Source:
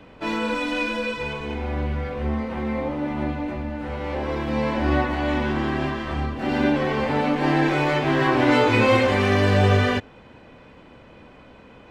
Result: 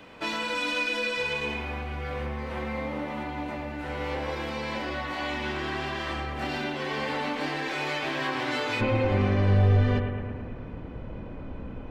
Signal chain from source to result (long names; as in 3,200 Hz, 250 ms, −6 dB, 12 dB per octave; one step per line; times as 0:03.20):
dynamic equaliser 4,300 Hz, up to +5 dB, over −41 dBFS, Q 0.93
downward compressor 5 to 1, threshold −28 dBFS, peak gain reduction 13.5 dB
spectral tilt +2 dB per octave, from 0:08.80 −3.5 dB per octave
bucket-brigade delay 110 ms, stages 2,048, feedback 66%, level −6 dB